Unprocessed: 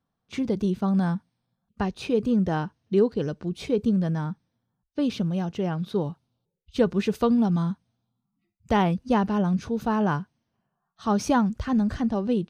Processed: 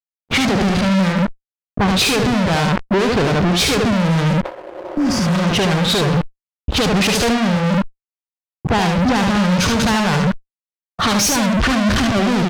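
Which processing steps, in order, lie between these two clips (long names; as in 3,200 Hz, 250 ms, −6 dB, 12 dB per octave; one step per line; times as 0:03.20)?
downward compressor 6 to 1, threshold −27 dBFS, peak gain reduction 11.5 dB
fuzz pedal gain 55 dB, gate −57 dBFS
high-shelf EQ 3,500 Hz +7 dB
single-tap delay 73 ms −3.5 dB
healed spectral selection 0:04.47–0:05.38, 310–4,500 Hz both
low-pass that shuts in the quiet parts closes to 440 Hz, open at −5.5 dBFS
leveller curve on the samples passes 2
brickwall limiter −9.5 dBFS, peak gain reduction 8.5 dB
level that may fall only so fast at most 150 dB per second
level −2.5 dB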